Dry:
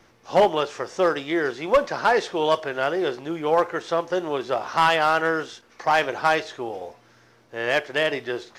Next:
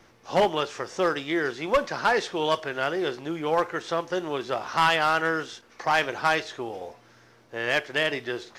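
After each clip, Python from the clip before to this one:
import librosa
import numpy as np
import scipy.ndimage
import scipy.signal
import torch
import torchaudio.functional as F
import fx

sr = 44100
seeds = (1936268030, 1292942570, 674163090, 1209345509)

y = fx.dynamic_eq(x, sr, hz=600.0, q=0.77, threshold_db=-33.0, ratio=4.0, max_db=-5)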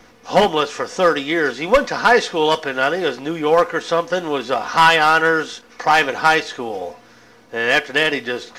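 y = x + 0.48 * np.pad(x, (int(4.1 * sr / 1000.0), 0))[:len(x)]
y = y * librosa.db_to_amplitude(8.0)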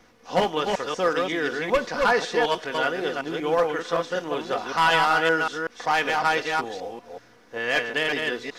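y = fx.reverse_delay(x, sr, ms=189, wet_db=-3.0)
y = y * librosa.db_to_amplitude(-8.5)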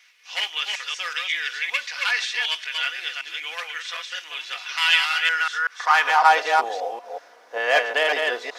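y = fx.filter_sweep_highpass(x, sr, from_hz=2400.0, to_hz=650.0, start_s=5.19, end_s=6.5, q=2.3)
y = y * librosa.db_to_amplitude(2.5)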